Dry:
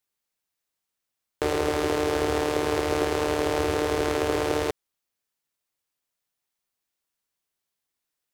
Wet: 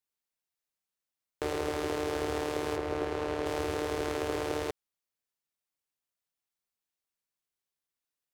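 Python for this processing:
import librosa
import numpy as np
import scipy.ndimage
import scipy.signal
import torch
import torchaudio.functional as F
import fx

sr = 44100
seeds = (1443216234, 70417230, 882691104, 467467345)

y = fx.high_shelf(x, sr, hz=fx.line((2.75, 3300.0), (3.45, 6100.0)), db=-12.0, at=(2.75, 3.45), fade=0.02)
y = y * librosa.db_to_amplitude(-7.5)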